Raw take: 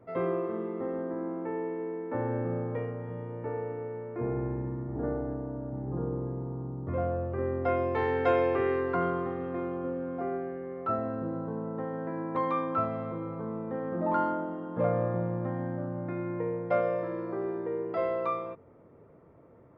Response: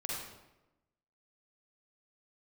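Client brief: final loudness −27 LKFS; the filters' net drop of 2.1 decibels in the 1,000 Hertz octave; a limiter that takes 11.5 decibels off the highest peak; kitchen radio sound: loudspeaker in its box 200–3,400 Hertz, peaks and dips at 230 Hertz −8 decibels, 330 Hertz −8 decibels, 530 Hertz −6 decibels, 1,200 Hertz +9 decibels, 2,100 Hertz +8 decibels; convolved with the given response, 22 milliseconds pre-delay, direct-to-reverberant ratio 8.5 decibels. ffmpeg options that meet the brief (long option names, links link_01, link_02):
-filter_complex "[0:a]equalizer=frequency=1000:width_type=o:gain=-8.5,alimiter=level_in=4.5dB:limit=-24dB:level=0:latency=1,volume=-4.5dB,asplit=2[link_01][link_02];[1:a]atrim=start_sample=2205,adelay=22[link_03];[link_02][link_03]afir=irnorm=-1:irlink=0,volume=-11dB[link_04];[link_01][link_04]amix=inputs=2:normalize=0,highpass=200,equalizer=frequency=230:width_type=q:width=4:gain=-8,equalizer=frequency=330:width_type=q:width=4:gain=-8,equalizer=frequency=530:width_type=q:width=4:gain=-6,equalizer=frequency=1200:width_type=q:width=4:gain=9,equalizer=frequency=2100:width_type=q:width=4:gain=8,lowpass=frequency=3400:width=0.5412,lowpass=frequency=3400:width=1.3066,volume=13dB"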